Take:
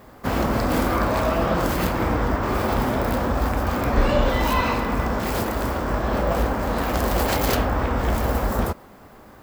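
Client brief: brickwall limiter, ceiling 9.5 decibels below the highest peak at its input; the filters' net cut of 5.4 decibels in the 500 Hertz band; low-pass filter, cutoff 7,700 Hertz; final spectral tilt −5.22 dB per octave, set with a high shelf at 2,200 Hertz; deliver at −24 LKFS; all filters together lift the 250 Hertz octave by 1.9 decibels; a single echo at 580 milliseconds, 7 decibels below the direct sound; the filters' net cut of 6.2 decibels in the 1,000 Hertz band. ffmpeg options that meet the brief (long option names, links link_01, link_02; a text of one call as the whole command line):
ffmpeg -i in.wav -af "lowpass=7700,equalizer=frequency=250:width_type=o:gain=4,equalizer=frequency=500:width_type=o:gain=-6,equalizer=frequency=1000:width_type=o:gain=-7,highshelf=frequency=2200:gain=3.5,alimiter=limit=-15.5dB:level=0:latency=1,aecho=1:1:580:0.447,volume=1dB" out.wav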